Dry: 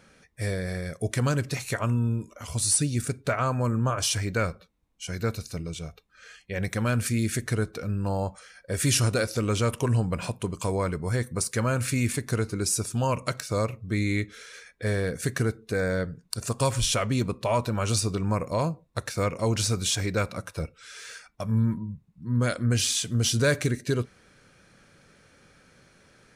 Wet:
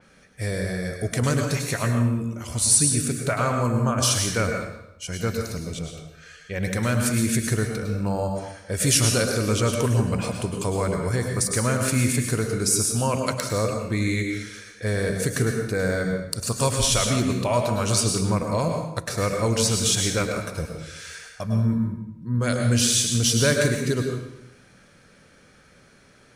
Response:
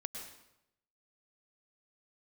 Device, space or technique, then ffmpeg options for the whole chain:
bathroom: -filter_complex "[1:a]atrim=start_sample=2205[s0];[0:a][s0]afir=irnorm=-1:irlink=0,adynamicequalizer=threshold=0.00794:dfrequency=4200:dqfactor=0.7:tfrequency=4200:tqfactor=0.7:attack=5:release=100:ratio=0.375:range=2:mode=boostabove:tftype=highshelf,volume=1.68"

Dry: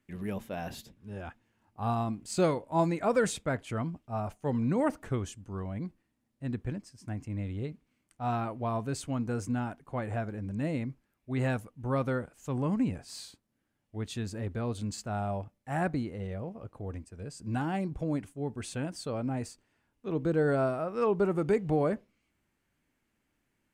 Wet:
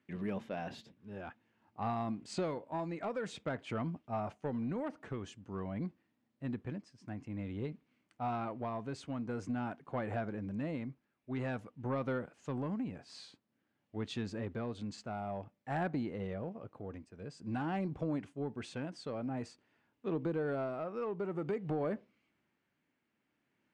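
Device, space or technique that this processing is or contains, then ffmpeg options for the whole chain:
AM radio: -af "highpass=140,lowpass=4200,acompressor=threshold=0.0282:ratio=5,asoftclip=type=tanh:threshold=0.0501,tremolo=f=0.5:d=0.37,volume=1.12"

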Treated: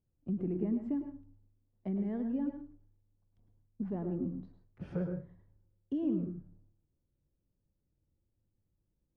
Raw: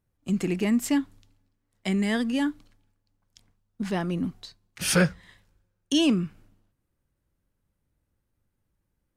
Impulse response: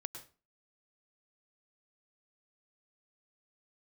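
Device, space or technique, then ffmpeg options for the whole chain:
television next door: -filter_complex "[0:a]acompressor=threshold=0.0447:ratio=3,lowpass=560[s0];[1:a]atrim=start_sample=2205[s1];[s0][s1]afir=irnorm=-1:irlink=0,volume=0.841"

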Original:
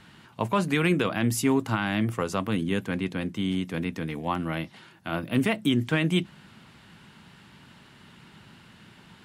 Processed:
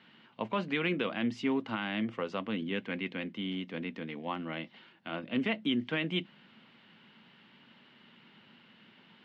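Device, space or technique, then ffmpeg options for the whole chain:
kitchen radio: -filter_complex "[0:a]asettb=1/sr,asplit=3[s0][s1][s2];[s0]atrim=end=2.744[s3];[s1]atrim=start=2.74:end=3.33,asetpts=PTS-STARTPTS,afade=t=in:d=0.004:c=qsin,afade=t=out:st=0.586:d=0.004:c=qsin,equalizer=f=2200:t=o:w=0.76:g=5[s4];[s2]atrim=start=3.326[s5];[s3][s4]acrossfade=d=0.004:c1=hsin:c2=qsin[s6];[s6][s5]acrossfade=d=0.004:c1=qsin:c2=hsin,highpass=200,equalizer=f=230:t=q:w=4:g=6,equalizer=f=520:t=q:w=4:g=4,equalizer=f=2100:t=q:w=4:g=4,equalizer=f=3000:t=q:w=4:g=6,lowpass=f=4400:w=0.5412,lowpass=f=4400:w=1.3066,volume=0.376"

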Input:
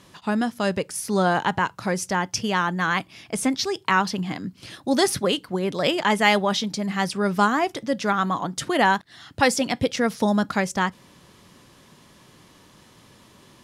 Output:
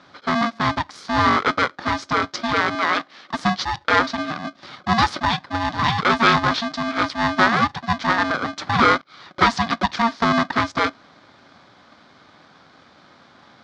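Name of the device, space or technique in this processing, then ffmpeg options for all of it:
ring modulator pedal into a guitar cabinet: -filter_complex "[0:a]aeval=exprs='val(0)*sgn(sin(2*PI*460*n/s))':c=same,highpass=110,equalizer=f=340:t=q:w=4:g=-6,equalizer=f=630:t=q:w=4:g=-7,equalizer=f=1200:t=q:w=4:g=4,equalizer=f=2700:t=q:w=4:g=-10,lowpass=f=4500:w=0.5412,lowpass=f=4500:w=1.3066,asettb=1/sr,asplit=3[s0][s1][s2];[s0]atrim=end=2.754[s3];[s1]atrim=start=2.75:end=3.34,asetpts=PTS-STARTPTS,afade=t=in:d=0.004:c=qsin,afade=t=out:st=0.586:d=0.004:c=qsin,highpass=250[s4];[s2]atrim=start=3.336[s5];[s3][s4]acrossfade=d=0.004:c1=hsin:c2=qsin[s6];[s6][s5]acrossfade=d=0.004:c1=qsin:c2=hsin,volume=1.58"

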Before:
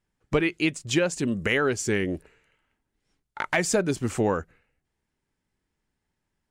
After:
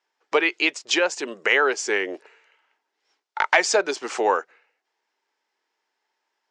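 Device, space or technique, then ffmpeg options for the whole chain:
phone speaker on a table: -filter_complex "[0:a]highpass=f=440:w=0.5412,highpass=f=440:w=1.3066,equalizer=f=550:t=q:w=4:g=-4,equalizer=f=900:t=q:w=4:g=4,equalizer=f=5200:t=q:w=4:g=3,lowpass=f=6400:w=0.5412,lowpass=f=6400:w=1.3066,asettb=1/sr,asplit=3[s0][s1][s2];[s0]atrim=end=0.984[s3];[s1]atrim=start=0.98:end=2.14,asetpts=PTS-STARTPTS,afade=t=in:d=0.004:c=qsin,afade=t=out:st=1.156:d=0.004:c=qsin,equalizer=f=4200:t=o:w=1.2:g=-3.5[s4];[s2]atrim=start=2.136[s5];[s3][s4]acrossfade=d=0.004:c1=hsin:c2=qsin[s6];[s6][s5]acrossfade=d=0.004:c1=qsin:c2=hsin,volume=2.24"

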